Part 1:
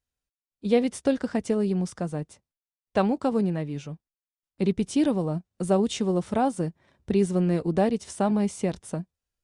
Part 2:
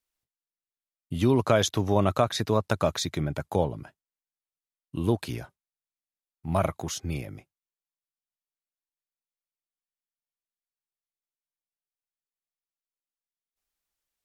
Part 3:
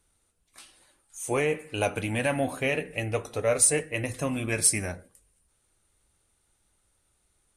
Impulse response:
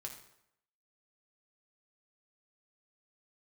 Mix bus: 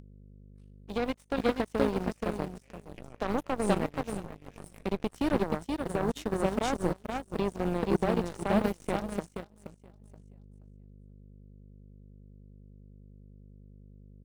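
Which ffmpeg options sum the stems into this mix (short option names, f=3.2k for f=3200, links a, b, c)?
-filter_complex "[0:a]acrusher=bits=7:mix=0:aa=0.5,adelay=250,volume=3dB,asplit=2[a][b];[b]volume=-7.5dB[c];[1:a]equalizer=f=4.1k:w=1.5:g=-7.5,alimiter=limit=-16.5dB:level=0:latency=1:release=315,aeval=exprs='abs(val(0))':c=same,adelay=1750,volume=-9.5dB,asplit=2[d][e];[e]volume=-10dB[f];[2:a]agate=range=-6dB:threshold=-53dB:ratio=16:detection=peak,volume=-20dB,asplit=3[g][h][i];[h]volume=-4.5dB[j];[i]volume=-6dB[k];[a][g]amix=inputs=2:normalize=0,bass=f=250:g=-7,treble=f=4k:g=-6,alimiter=limit=-17.5dB:level=0:latency=1:release=48,volume=0dB[l];[3:a]atrim=start_sample=2205[m];[j][m]afir=irnorm=-1:irlink=0[n];[c][f][k]amix=inputs=3:normalize=0,aecho=0:1:476|952|1428|1904:1|0.24|0.0576|0.0138[o];[d][l][n][o]amix=inputs=4:normalize=0,aeval=exprs='val(0)+0.0126*(sin(2*PI*50*n/s)+sin(2*PI*2*50*n/s)/2+sin(2*PI*3*50*n/s)/3+sin(2*PI*4*50*n/s)/4+sin(2*PI*5*50*n/s)/5)':c=same,aeval=exprs='0.266*(cos(1*acos(clip(val(0)/0.266,-1,1)))-cos(1*PI/2))+0.0376*(cos(3*acos(clip(val(0)/0.266,-1,1)))-cos(3*PI/2))+0.0211*(cos(7*acos(clip(val(0)/0.266,-1,1)))-cos(7*PI/2))':c=same,acompressor=mode=upward:threshold=-37dB:ratio=2.5"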